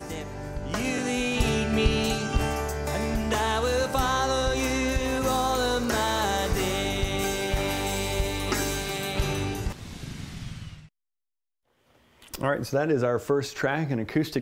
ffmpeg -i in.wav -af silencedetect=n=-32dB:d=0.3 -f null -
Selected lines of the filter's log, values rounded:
silence_start: 10.68
silence_end: 12.34 | silence_duration: 1.66